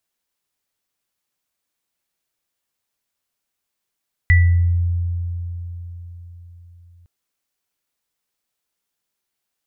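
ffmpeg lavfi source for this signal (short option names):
-f lavfi -i "aevalsrc='0.376*pow(10,-3*t/4.36)*sin(2*PI*86.8*t)+0.237*pow(10,-3*t/0.51)*sin(2*PI*1970*t)':d=2.76:s=44100"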